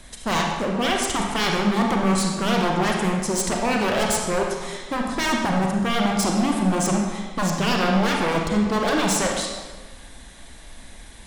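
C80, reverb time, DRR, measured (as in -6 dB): 3.5 dB, 1.4 s, -0.5 dB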